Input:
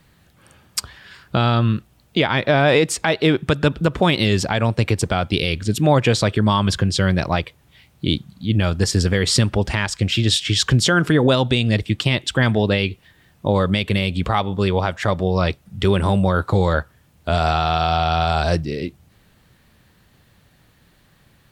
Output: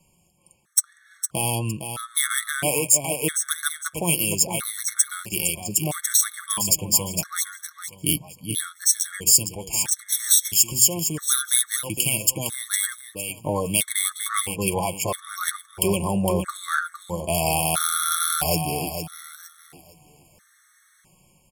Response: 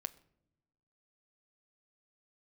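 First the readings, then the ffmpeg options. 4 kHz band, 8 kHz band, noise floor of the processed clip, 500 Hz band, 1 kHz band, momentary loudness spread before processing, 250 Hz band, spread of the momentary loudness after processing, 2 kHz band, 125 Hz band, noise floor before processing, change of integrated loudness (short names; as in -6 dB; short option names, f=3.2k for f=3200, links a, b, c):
-5.0 dB, +11.5 dB, -60 dBFS, -10.0 dB, -7.5 dB, 8 LU, -10.5 dB, 11 LU, -7.0 dB, -13.0 dB, -56 dBFS, -3.0 dB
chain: -filter_complex "[0:a]acrossover=split=630|2100[a][b][c];[c]adynamicsmooth=sensitivity=3:basefreq=3.3k[d];[a][b][d]amix=inputs=3:normalize=0,tiltshelf=f=1.4k:g=-5,aexciter=amount=13.7:drive=7.6:freq=6.3k,flanger=delay=5.4:depth=1.3:regen=34:speed=0.19:shape=triangular,bandreject=f=62.17:t=h:w=4,bandreject=f=124.34:t=h:w=4,bandreject=f=186.51:t=h:w=4,dynaudnorm=f=130:g=7:m=4dB,asplit=2[e][f];[f]aecho=0:1:459|918|1377|1836:0.398|0.119|0.0358|0.0107[g];[e][g]amix=inputs=2:normalize=0,afftfilt=real='re*gt(sin(2*PI*0.76*pts/sr)*(1-2*mod(floor(b*sr/1024/1100),2)),0)':imag='im*gt(sin(2*PI*0.76*pts/sr)*(1-2*mod(floor(b*sr/1024/1100),2)),0)':win_size=1024:overlap=0.75,volume=1.5dB"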